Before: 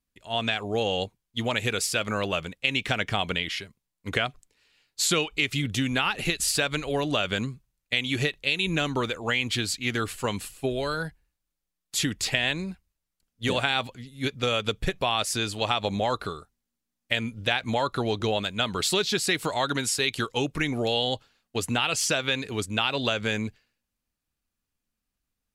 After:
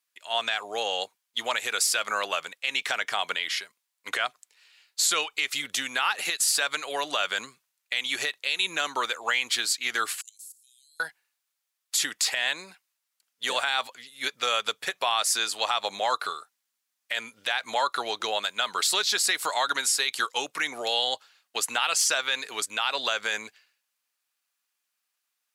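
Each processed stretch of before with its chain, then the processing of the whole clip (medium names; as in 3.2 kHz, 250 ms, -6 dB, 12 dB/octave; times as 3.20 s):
10.21–11.00 s: inverse Chebyshev high-pass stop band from 1.4 kHz, stop band 70 dB + level held to a coarse grid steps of 17 dB
whole clip: dynamic bell 2.7 kHz, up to -7 dB, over -41 dBFS, Q 1.4; high-pass 1 kHz 12 dB/octave; peak limiter -20.5 dBFS; trim +7 dB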